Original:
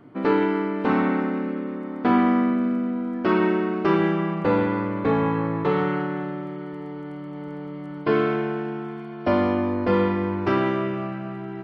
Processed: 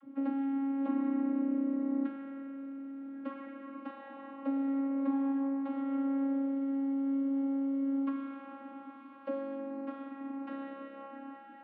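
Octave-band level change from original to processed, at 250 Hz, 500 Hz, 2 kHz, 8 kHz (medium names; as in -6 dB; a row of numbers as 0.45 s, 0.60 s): -8.5 dB, -19.5 dB, -23.0 dB, no reading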